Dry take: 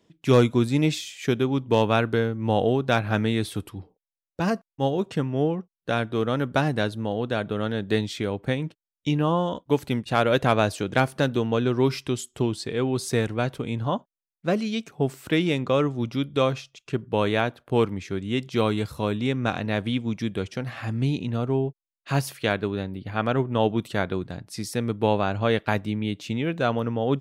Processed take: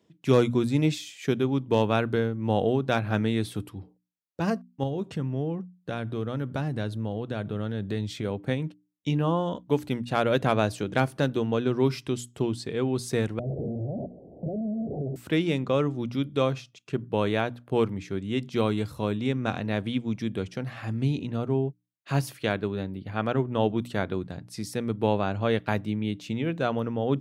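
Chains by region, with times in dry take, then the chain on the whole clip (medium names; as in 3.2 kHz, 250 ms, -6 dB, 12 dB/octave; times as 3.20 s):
4.83–8.25 s: peaking EQ 76 Hz +8 dB 2 oct + compression 2.5:1, threshold -26 dBFS
13.39–15.16 s: one-bit comparator + steep low-pass 690 Hz 72 dB/octave + three bands compressed up and down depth 40%
whole clip: high-pass 81 Hz; bass shelf 430 Hz +4.5 dB; hum notches 60/120/180/240/300 Hz; trim -4.5 dB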